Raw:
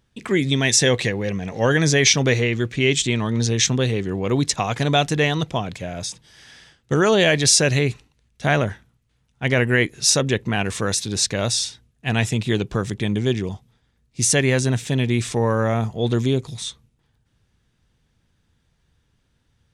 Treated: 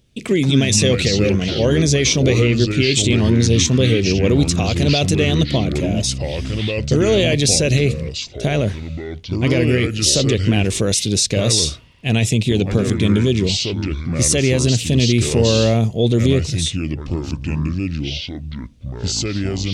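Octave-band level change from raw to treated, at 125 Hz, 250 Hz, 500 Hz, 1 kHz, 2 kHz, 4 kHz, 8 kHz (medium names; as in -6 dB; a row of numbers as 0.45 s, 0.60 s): +6.0 dB, +6.0 dB, +3.5 dB, -3.5 dB, -1.5 dB, +4.0 dB, +2.0 dB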